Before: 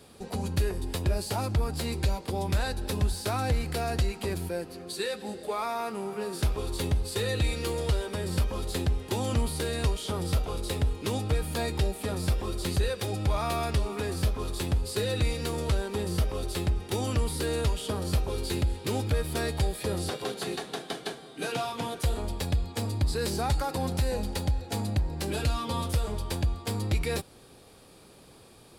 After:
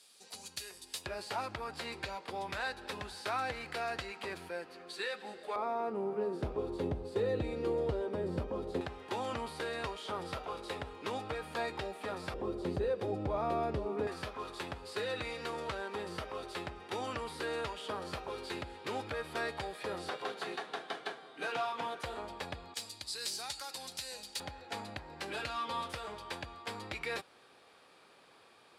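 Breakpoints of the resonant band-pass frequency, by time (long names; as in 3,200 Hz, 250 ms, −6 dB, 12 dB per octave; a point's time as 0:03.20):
resonant band-pass, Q 0.83
6,100 Hz
from 0:01.06 1,600 Hz
from 0:05.56 440 Hz
from 0:08.81 1,200 Hz
from 0:12.34 460 Hz
from 0:14.07 1,300 Hz
from 0:22.74 5,400 Hz
from 0:24.40 1,600 Hz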